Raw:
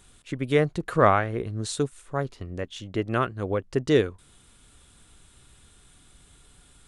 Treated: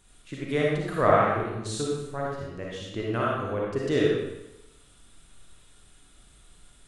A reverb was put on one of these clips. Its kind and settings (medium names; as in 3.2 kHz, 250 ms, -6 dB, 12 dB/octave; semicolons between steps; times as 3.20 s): algorithmic reverb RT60 0.92 s, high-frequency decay 0.9×, pre-delay 15 ms, DRR -4.5 dB; trim -6.5 dB